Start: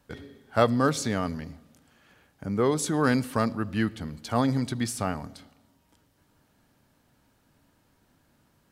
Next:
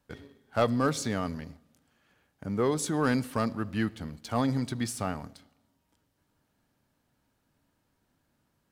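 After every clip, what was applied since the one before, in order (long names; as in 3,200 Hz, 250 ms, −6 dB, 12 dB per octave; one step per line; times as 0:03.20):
leveller curve on the samples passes 1
level −6.5 dB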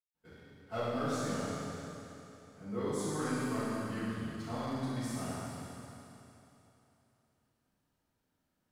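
convolution reverb RT60 3.1 s, pre-delay 143 ms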